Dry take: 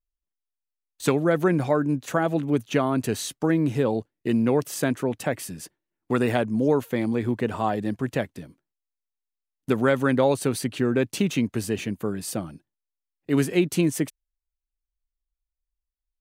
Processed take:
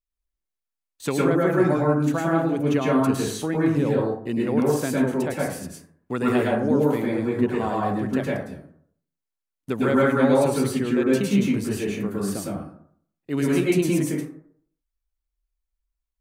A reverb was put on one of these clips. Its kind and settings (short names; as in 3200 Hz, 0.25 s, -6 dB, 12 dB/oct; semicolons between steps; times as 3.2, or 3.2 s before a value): plate-style reverb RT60 0.6 s, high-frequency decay 0.4×, pre-delay 95 ms, DRR -4.5 dB; gain -4.5 dB